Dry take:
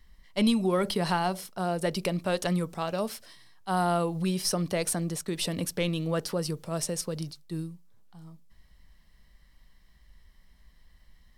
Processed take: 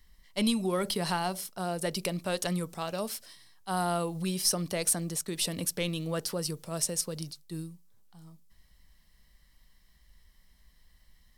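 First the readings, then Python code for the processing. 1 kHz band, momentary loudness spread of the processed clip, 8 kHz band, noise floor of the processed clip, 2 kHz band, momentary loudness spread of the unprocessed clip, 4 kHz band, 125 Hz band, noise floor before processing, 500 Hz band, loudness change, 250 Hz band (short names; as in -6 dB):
-3.5 dB, 12 LU, +3.5 dB, -63 dBFS, -2.5 dB, 11 LU, +0.5 dB, -4.0 dB, -60 dBFS, -4.0 dB, -2.0 dB, -4.0 dB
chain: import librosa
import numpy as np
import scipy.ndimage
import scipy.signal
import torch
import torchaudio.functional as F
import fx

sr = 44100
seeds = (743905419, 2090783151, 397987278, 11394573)

y = fx.high_shelf(x, sr, hz=4300.0, db=9.5)
y = y * librosa.db_to_amplitude(-4.0)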